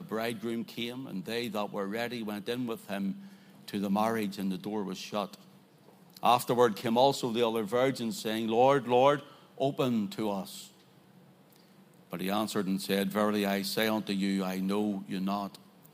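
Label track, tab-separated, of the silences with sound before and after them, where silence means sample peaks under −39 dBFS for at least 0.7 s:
5.350000	6.170000	silence
10.650000	11.560000	silence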